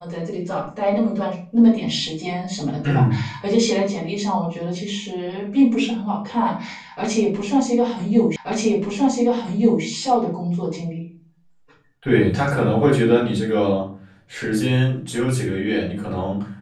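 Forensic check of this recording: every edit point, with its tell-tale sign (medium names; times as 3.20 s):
8.36 s: repeat of the last 1.48 s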